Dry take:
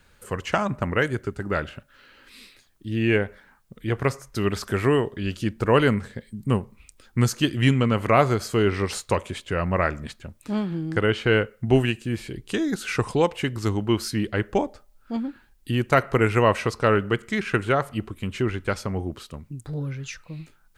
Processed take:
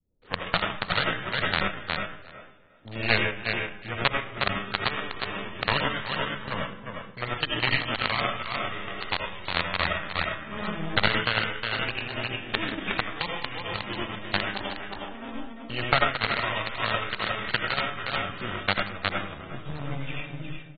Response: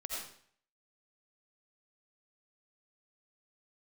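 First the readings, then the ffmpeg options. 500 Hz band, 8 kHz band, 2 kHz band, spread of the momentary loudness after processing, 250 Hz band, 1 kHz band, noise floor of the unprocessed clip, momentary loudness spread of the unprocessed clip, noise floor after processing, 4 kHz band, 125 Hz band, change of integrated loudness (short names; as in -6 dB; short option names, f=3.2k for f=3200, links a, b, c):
-10.0 dB, under -40 dB, +2.0 dB, 11 LU, -11.0 dB, -1.5 dB, -59 dBFS, 14 LU, -45 dBFS, +5.5 dB, -10.5 dB, -4.0 dB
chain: -filter_complex "[0:a]acrossover=split=500[a][b];[a]aeval=exprs='(tanh(56.2*val(0)+0.5)-tanh(0.5))/56.2':c=same[c];[b]acrusher=bits=4:dc=4:mix=0:aa=0.000001[d];[c][d]amix=inputs=2:normalize=0,agate=range=-8dB:threshold=-49dB:ratio=16:detection=peak,aecho=1:1:361|722|1083:0.562|0.118|0.0248,asplit=2[e][f];[f]aeval=exprs='sgn(val(0))*max(abs(val(0))-0.01,0)':c=same,volume=-9dB[g];[e][g]amix=inputs=2:normalize=0[h];[1:a]atrim=start_sample=2205[i];[h][i]afir=irnorm=-1:irlink=0,acrossover=split=290|1900|5000[j][k][l][m];[j]acompressor=threshold=-29dB:ratio=4[n];[k]acompressor=threshold=-34dB:ratio=4[o];[l]acompressor=threshold=-34dB:ratio=4[p];[m]acompressor=threshold=-46dB:ratio=4[q];[n][o][p][q]amix=inputs=4:normalize=0,lowshelf=f=82:g=-6.5,acontrast=54,adynamicequalizer=threshold=0.00708:dfrequency=480:dqfactor=1.3:tfrequency=480:tqfactor=1.3:attack=5:release=100:ratio=0.375:range=3:mode=cutabove:tftype=bell,aeval=exprs='0.447*(cos(1*acos(clip(val(0)/0.447,-1,1)))-cos(1*PI/2))+0.126*(cos(4*acos(clip(val(0)/0.447,-1,1)))-cos(4*PI/2))+0.0126*(cos(6*acos(clip(val(0)/0.447,-1,1)))-cos(6*PI/2))+0.0398*(cos(7*acos(clip(val(0)/0.447,-1,1)))-cos(7*PI/2))':c=same,volume=2dB" -ar 32000 -c:a aac -b:a 16k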